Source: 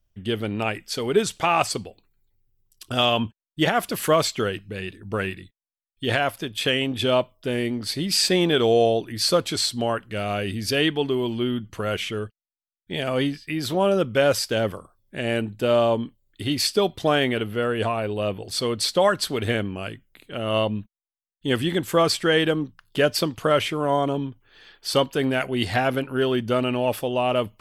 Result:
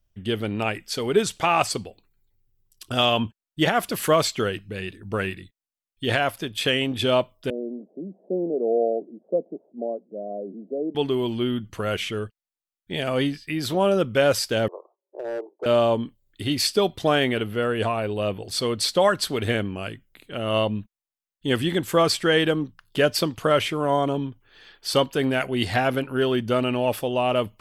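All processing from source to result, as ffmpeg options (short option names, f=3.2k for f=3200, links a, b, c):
-filter_complex "[0:a]asettb=1/sr,asplit=3[a][b][c];[a]atrim=end=7.504[d];[b]atrim=start=7.5:end=10.95,asetpts=PTS-STARTPTS,afade=t=in:d=0.004:c=qsin,afade=t=out:st=3.446:d=0.004:c=qsin,asuperpass=centerf=340:order=12:qfactor=0.68,aemphasis=mode=production:type=riaa[e];[c]atrim=start=10.946[f];[d][e]acrossfade=d=0.004:c1=hsin:c2=qsin[g];[g][f]acrossfade=d=0.004:c1=qsin:c2=hsin,asettb=1/sr,asplit=3[h][i][j];[h]atrim=end=14.684[k];[i]atrim=start=14.68:end=15.66,asetpts=PTS-STARTPTS,afade=t=in:d=0.004:c=qsin,afade=t=out:st=0.976:d=0.004:c=qsin,asuperpass=centerf=600:order=12:qfactor=0.91,asoftclip=type=hard:threshold=-25.5dB[l];[j]atrim=start=15.656[m];[k][l]acrossfade=d=0.004:c1=hsin:c2=qsin[n];[n][m]acrossfade=d=0.004:c1=qsin:c2=hsin"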